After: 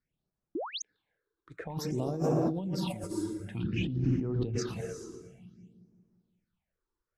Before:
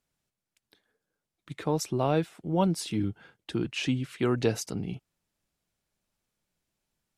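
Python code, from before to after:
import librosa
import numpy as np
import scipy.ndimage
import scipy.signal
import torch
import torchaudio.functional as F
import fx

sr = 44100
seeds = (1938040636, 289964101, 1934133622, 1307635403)

y = fx.peak_eq(x, sr, hz=250.0, db=8.5, octaves=2.3, at=(1.58, 3.04))
y = fx.env_lowpass(y, sr, base_hz=3000.0, full_db=-19.0)
y = fx.rev_gated(y, sr, seeds[0], gate_ms=460, shape='flat', drr_db=3.0)
y = fx.dereverb_blind(y, sr, rt60_s=0.52)
y = fx.echo_split(y, sr, split_hz=370.0, low_ms=180, high_ms=115, feedback_pct=52, wet_db=-9)
y = fx.spec_paint(y, sr, seeds[1], shape='rise', start_s=0.55, length_s=0.27, low_hz=280.0, high_hz=6900.0, level_db=-17.0)
y = fx.riaa(y, sr, side='playback', at=(3.63, 4.57), fade=0.02)
y = fx.over_compress(y, sr, threshold_db=-25.0, ratio=-1.0)
y = fx.phaser_stages(y, sr, stages=6, low_hz=170.0, high_hz=3400.0, hz=0.54, feedback_pct=35)
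y = F.gain(torch.from_numpy(y), -6.0).numpy()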